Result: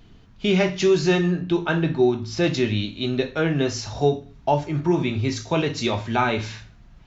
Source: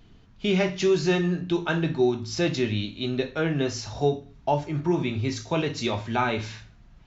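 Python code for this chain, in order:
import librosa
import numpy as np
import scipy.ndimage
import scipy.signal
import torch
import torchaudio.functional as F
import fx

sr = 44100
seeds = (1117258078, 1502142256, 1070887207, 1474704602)

y = fx.high_shelf(x, sr, hz=6100.0, db=-11.0, at=(1.31, 2.44))
y = y * 10.0 ** (3.5 / 20.0)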